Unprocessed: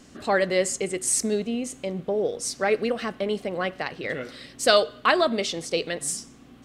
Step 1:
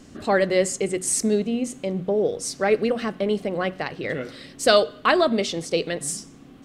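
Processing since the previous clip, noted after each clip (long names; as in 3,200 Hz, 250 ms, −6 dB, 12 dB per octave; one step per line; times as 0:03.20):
low-shelf EQ 410 Hz +7 dB
mains-hum notches 60/120/180/240 Hz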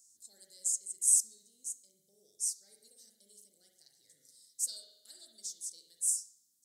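inverse Chebyshev high-pass filter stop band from 2,800 Hz, stop band 50 dB
convolution reverb RT60 0.90 s, pre-delay 45 ms, DRR 0.5 dB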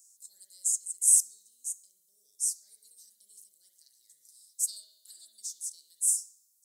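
first-order pre-emphasis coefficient 0.9
level +4 dB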